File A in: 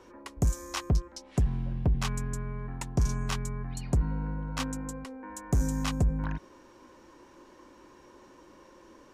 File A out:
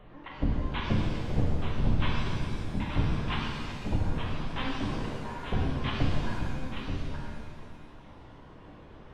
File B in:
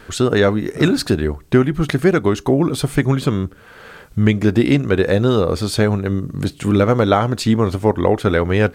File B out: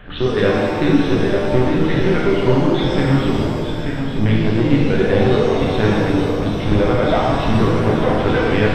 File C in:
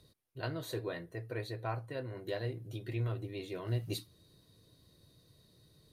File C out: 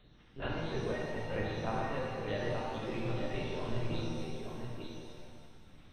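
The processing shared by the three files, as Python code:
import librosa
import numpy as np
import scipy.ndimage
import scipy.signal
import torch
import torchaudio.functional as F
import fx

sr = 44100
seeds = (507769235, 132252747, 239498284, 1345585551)

p1 = fx.dereverb_blind(x, sr, rt60_s=2.0)
p2 = fx.highpass(p1, sr, hz=90.0, slope=6)
p3 = fx.peak_eq(p2, sr, hz=1300.0, db=-5.5, octaves=0.21)
p4 = fx.rider(p3, sr, range_db=3, speed_s=0.5)
p5 = p3 + (p4 * librosa.db_to_amplitude(0.0))
p6 = 10.0 ** (-7.0 / 20.0) * np.tanh(p5 / 10.0 ** (-7.0 / 20.0))
p7 = fx.add_hum(p6, sr, base_hz=60, snr_db=24)
p8 = fx.dmg_crackle(p7, sr, seeds[0], per_s=49.0, level_db=-38.0)
p9 = p8 + 10.0 ** (-6.5 / 20.0) * np.pad(p8, (int(882 * sr / 1000.0), 0))[:len(p8)]
p10 = fx.lpc_vocoder(p9, sr, seeds[1], excitation='pitch_kept', order=10)
p11 = fx.rev_shimmer(p10, sr, seeds[2], rt60_s=1.8, semitones=7, shimmer_db=-8, drr_db=-4.0)
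y = p11 * librosa.db_to_amplitude(-6.0)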